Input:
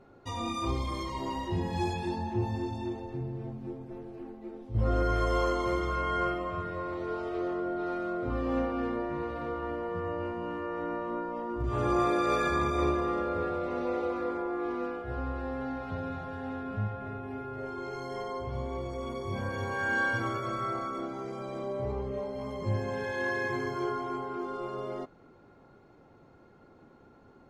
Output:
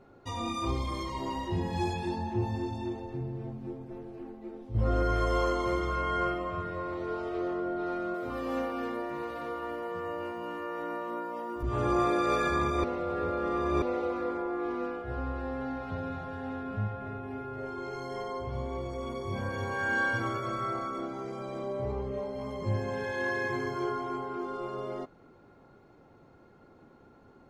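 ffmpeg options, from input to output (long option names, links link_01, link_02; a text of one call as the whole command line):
ffmpeg -i in.wav -filter_complex "[0:a]asettb=1/sr,asplit=3[link_01][link_02][link_03];[link_01]atrim=end=8.144[link_04];[link_02]atrim=start=8.14:end=11.63,asetpts=PTS-STARTPTS,afade=type=in:duration=0.004:curve=qsin,afade=type=out:start_time=3.486:duration=0.004:curve=qsin,aemphasis=mode=production:type=bsi[link_05];[link_03]atrim=start=11.626[link_06];[link_04][link_05]acrossfade=duration=0.004:curve1=hsin:curve2=qsin[link_07];[link_07][link_06]acrossfade=duration=0.004:curve1=qsin:curve2=hsin,asplit=3[link_08][link_09][link_10];[link_08]atrim=end=12.842[link_11];[link_09]atrim=start=12.838:end=13.822,asetpts=PTS-STARTPTS,areverse[link_12];[link_10]atrim=start=13.818[link_13];[link_11][link_12]acrossfade=duration=0.004:curve1=hsin:curve2=hsin[link_14];[link_14][link_13]acrossfade=duration=0.004:curve1=hsin:curve2=hsin" out.wav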